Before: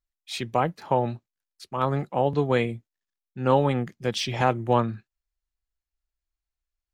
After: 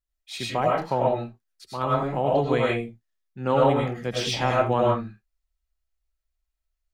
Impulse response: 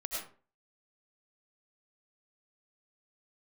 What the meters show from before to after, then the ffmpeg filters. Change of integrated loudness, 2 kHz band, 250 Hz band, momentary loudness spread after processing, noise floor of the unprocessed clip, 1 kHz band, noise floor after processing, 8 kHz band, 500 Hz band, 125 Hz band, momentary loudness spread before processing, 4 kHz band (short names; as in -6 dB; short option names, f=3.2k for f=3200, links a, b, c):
+1.5 dB, +1.5 dB, 0.0 dB, 13 LU, under -85 dBFS, +1.0 dB, -82 dBFS, +1.5 dB, +2.5 dB, -1.0 dB, 14 LU, +2.0 dB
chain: -filter_complex "[0:a]equalizer=f=61:t=o:w=0.35:g=10[a];[1:a]atrim=start_sample=2205,afade=t=out:st=0.25:d=0.01,atrim=end_sample=11466[b];[a][b]afir=irnorm=-1:irlink=0"